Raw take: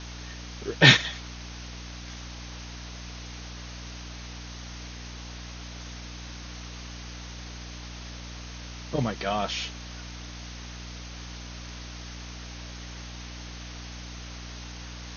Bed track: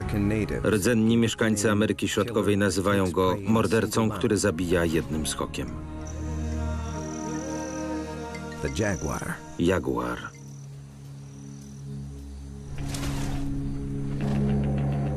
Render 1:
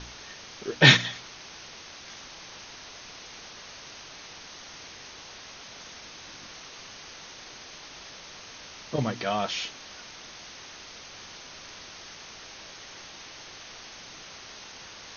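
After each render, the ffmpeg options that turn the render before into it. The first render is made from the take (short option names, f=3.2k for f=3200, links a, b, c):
-af "bandreject=f=60:t=h:w=4,bandreject=f=120:t=h:w=4,bandreject=f=180:t=h:w=4,bandreject=f=240:t=h:w=4,bandreject=f=300:t=h:w=4"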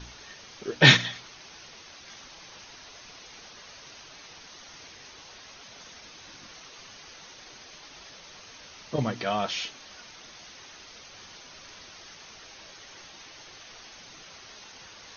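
-af "afftdn=nr=6:nf=-46"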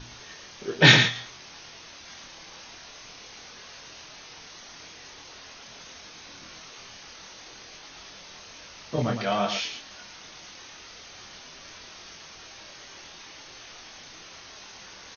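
-filter_complex "[0:a]asplit=2[a][b];[b]adelay=25,volume=-4.5dB[c];[a][c]amix=inputs=2:normalize=0,aecho=1:1:111:0.422"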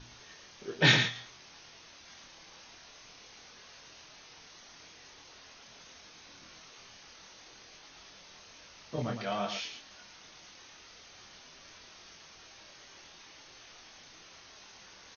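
-af "volume=-8dB"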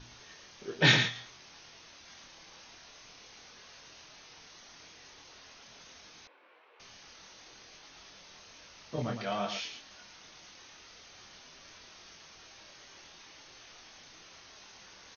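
-filter_complex "[0:a]asettb=1/sr,asplit=3[a][b][c];[a]atrim=end=6.274[d];[b]atrim=start=6.27:end=6.8,asetpts=PTS-STARTPTS,afade=t=in:d=0.004:c=qsin,afade=t=out:st=0.526:d=0.004:c=qsin,highpass=f=420:w=0.5412,highpass=f=420:w=1.3066,equalizer=f=470:t=q:w=4:g=3,equalizer=f=680:t=q:w=4:g=-5,equalizer=f=1.3k:t=q:w=4:g=-6,equalizer=f=1.9k:t=q:w=4:g=-6,lowpass=f=2.2k:w=0.5412,lowpass=f=2.2k:w=1.3066[e];[c]atrim=start=6.796[f];[d][e]acrossfade=d=0.004:c1=hsin:c2=qsin[g];[g][f]acrossfade=d=0.004:c1=qsin:c2=hsin"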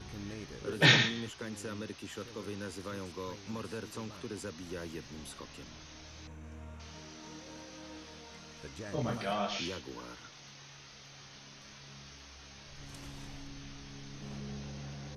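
-filter_complex "[1:a]volume=-18.5dB[a];[0:a][a]amix=inputs=2:normalize=0"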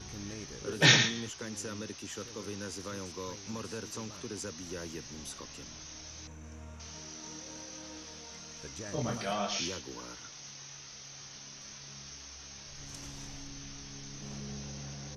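-af "equalizer=f=6k:t=o:w=0.54:g=11"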